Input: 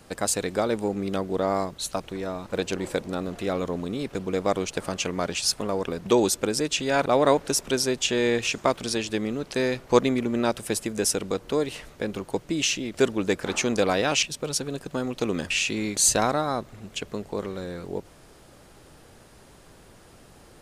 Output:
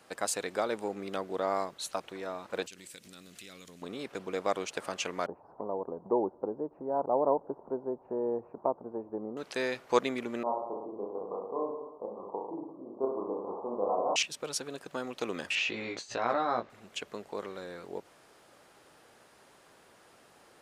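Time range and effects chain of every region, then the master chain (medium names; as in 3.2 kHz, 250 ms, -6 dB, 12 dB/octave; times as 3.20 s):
2.66–3.82 s: FFT filter 170 Hz 0 dB, 820 Hz -18 dB, 2.4 kHz +2 dB, 8.7 kHz +12 dB + compression 10:1, threshold -36 dBFS
5.26–9.37 s: elliptic low-pass 950 Hz, stop band 70 dB + tape noise reduction on one side only encoder only
10.43–14.16 s: steep low-pass 1.1 kHz 96 dB/octave + tilt EQ +4 dB/octave + reverse bouncing-ball echo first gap 30 ms, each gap 1.1×, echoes 8, each echo -2 dB
15.55–16.70 s: compressor with a negative ratio -24 dBFS, ratio -0.5 + distance through air 180 m + doubling 17 ms -3 dB
whole clip: high-pass 930 Hz 6 dB/octave; treble shelf 2.6 kHz -8.5 dB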